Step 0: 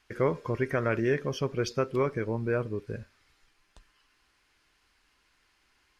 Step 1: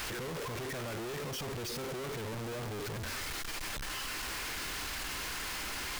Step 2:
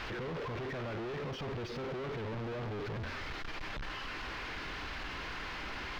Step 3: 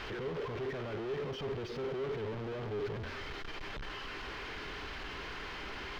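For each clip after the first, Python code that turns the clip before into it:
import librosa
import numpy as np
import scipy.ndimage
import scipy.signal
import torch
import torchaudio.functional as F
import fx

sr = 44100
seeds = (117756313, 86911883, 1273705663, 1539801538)

y1 = np.sign(x) * np.sqrt(np.mean(np.square(x)))
y1 = y1 * librosa.db_to_amplitude(-6.0)
y2 = fx.air_absorb(y1, sr, metres=250.0)
y2 = y2 * librosa.db_to_amplitude(1.0)
y3 = fx.small_body(y2, sr, hz=(410.0, 3100.0), ring_ms=45, db=8)
y3 = y3 * librosa.db_to_amplitude(-2.0)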